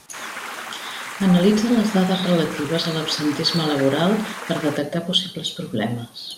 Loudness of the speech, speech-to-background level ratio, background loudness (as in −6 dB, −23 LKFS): −21.0 LKFS, 10.5 dB, −31.5 LKFS